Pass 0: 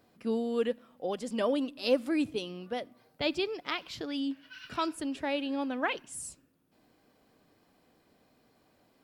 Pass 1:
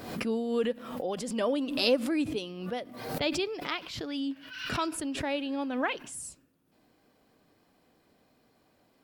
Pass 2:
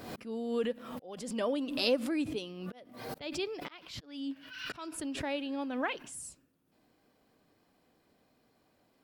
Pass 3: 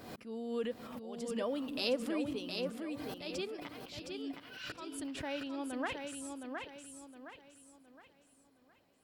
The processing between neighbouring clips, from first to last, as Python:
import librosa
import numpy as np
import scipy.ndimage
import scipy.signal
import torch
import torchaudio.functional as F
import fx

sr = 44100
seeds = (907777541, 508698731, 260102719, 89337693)

y1 = fx.pre_swell(x, sr, db_per_s=58.0)
y2 = fx.auto_swell(y1, sr, attack_ms=293.0)
y2 = y2 * 10.0 ** (-3.5 / 20.0)
y3 = fx.echo_feedback(y2, sr, ms=715, feedback_pct=37, wet_db=-5)
y3 = y3 * 10.0 ** (-4.5 / 20.0)